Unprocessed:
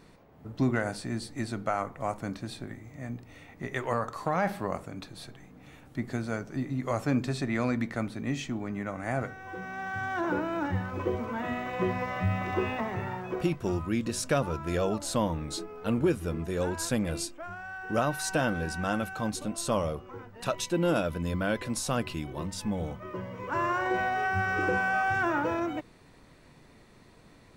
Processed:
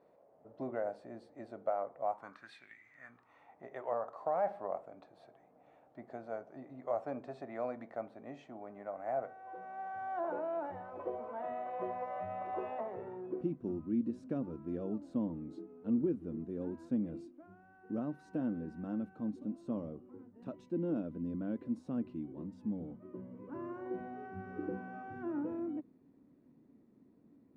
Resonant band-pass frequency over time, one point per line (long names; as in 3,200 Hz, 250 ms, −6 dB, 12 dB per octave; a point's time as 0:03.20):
resonant band-pass, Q 3.4
0:02.00 590 Hz
0:02.67 2,500 Hz
0:03.66 660 Hz
0:12.74 660 Hz
0:13.46 260 Hz